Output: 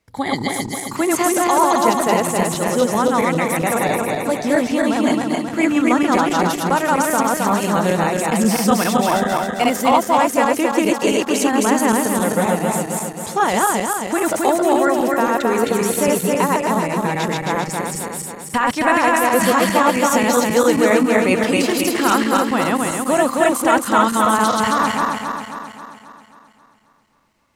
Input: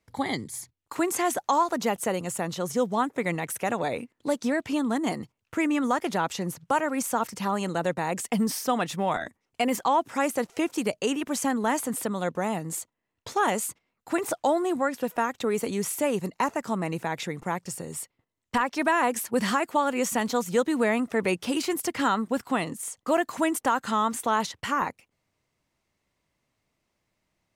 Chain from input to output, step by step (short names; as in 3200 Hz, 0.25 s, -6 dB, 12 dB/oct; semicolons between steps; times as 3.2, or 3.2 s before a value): regenerating reverse delay 0.134 s, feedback 73%, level 0 dB; gain +5.5 dB